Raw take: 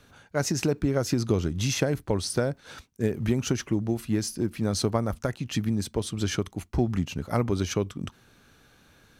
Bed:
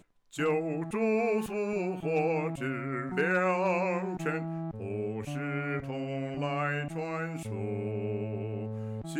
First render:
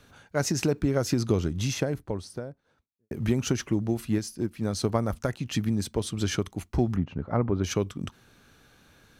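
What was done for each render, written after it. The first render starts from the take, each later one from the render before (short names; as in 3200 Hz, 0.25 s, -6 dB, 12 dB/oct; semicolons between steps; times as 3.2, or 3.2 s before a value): 1.24–3.11 studio fade out; 4.18–4.89 upward expander, over -35 dBFS; 6.96–7.64 LPF 1500 Hz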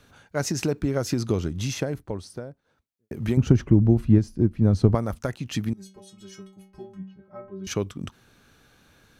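3.37–4.95 tilt -4 dB/oct; 5.73–7.67 metallic resonator 190 Hz, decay 0.5 s, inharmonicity 0.008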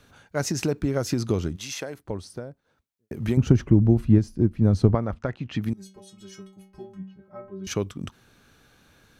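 1.55–2.04 HPF 1400 Hz -> 510 Hz 6 dB/oct; 4.89–5.62 LPF 2800 Hz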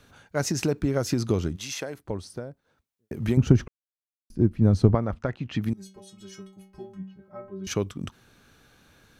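3.68–4.3 mute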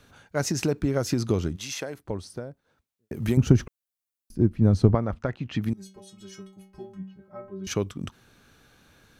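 3.15–4.38 high shelf 7400 Hz +9.5 dB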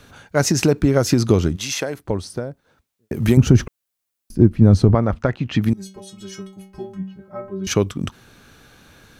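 maximiser +9 dB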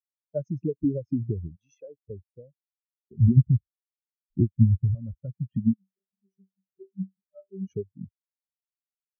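compressor 8:1, threshold -19 dBFS, peak gain reduction 13 dB; spectral expander 4:1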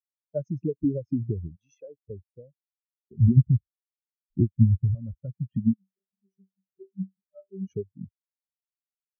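nothing audible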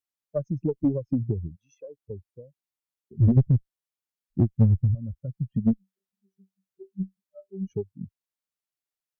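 tube stage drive 12 dB, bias 0.35; in parallel at -8 dB: hard clip -19 dBFS, distortion -12 dB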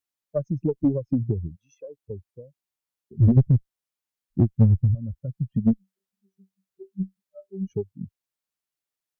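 gain +2 dB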